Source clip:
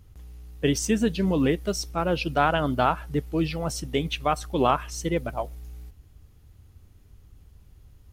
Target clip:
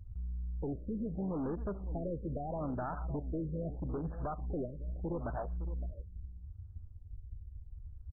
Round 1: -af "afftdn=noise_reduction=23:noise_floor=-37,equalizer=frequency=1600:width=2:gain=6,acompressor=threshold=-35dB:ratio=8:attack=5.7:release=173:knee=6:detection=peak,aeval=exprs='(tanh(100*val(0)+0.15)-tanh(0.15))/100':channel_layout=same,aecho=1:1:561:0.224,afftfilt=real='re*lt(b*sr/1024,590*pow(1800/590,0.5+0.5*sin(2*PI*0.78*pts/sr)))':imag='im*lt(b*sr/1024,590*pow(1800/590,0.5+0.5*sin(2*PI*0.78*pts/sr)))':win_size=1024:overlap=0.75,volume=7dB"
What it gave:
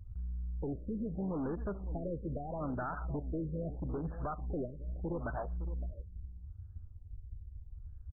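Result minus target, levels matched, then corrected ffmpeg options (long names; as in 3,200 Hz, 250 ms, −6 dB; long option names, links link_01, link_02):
2,000 Hz band +5.5 dB
-af "afftdn=noise_reduction=23:noise_floor=-37,equalizer=frequency=1600:width=2:gain=-3,acompressor=threshold=-35dB:ratio=8:attack=5.7:release=173:knee=6:detection=peak,aeval=exprs='(tanh(100*val(0)+0.15)-tanh(0.15))/100':channel_layout=same,aecho=1:1:561:0.224,afftfilt=real='re*lt(b*sr/1024,590*pow(1800/590,0.5+0.5*sin(2*PI*0.78*pts/sr)))':imag='im*lt(b*sr/1024,590*pow(1800/590,0.5+0.5*sin(2*PI*0.78*pts/sr)))':win_size=1024:overlap=0.75,volume=7dB"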